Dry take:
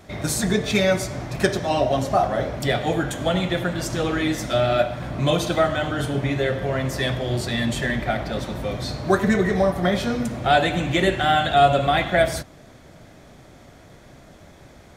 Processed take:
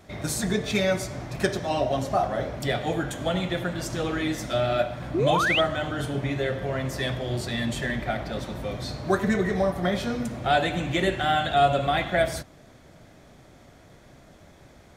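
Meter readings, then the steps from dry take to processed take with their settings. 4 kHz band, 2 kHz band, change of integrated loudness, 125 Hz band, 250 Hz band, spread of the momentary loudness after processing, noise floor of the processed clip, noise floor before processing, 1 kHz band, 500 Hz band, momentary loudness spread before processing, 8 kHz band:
-3.5 dB, -3.5 dB, -4.0 dB, -4.5 dB, -4.5 dB, 8 LU, -52 dBFS, -48 dBFS, -4.0 dB, -4.5 dB, 7 LU, -4.5 dB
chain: painted sound rise, 5.14–5.61 s, 300–3500 Hz -19 dBFS; trim -4.5 dB

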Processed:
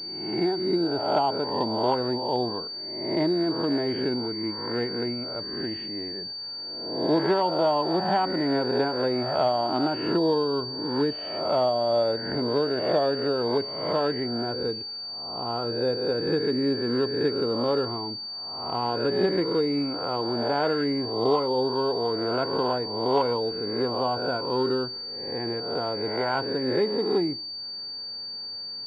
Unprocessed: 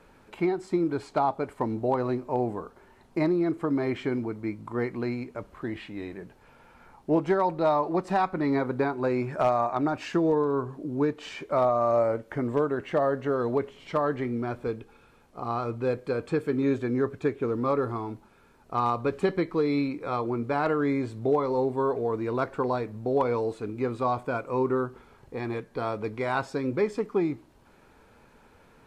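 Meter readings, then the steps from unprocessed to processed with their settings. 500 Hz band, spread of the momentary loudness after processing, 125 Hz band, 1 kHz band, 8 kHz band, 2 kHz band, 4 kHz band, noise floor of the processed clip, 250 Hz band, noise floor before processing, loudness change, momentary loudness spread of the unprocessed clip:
+2.0 dB, 8 LU, -1.5 dB, +1.0 dB, no reading, +1.0 dB, +20.0 dB, -36 dBFS, +1.0 dB, -58 dBFS, +2.0 dB, 10 LU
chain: reverse spectral sustain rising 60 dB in 0.93 s; comb of notches 1.2 kHz; class-D stage that switches slowly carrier 4.6 kHz

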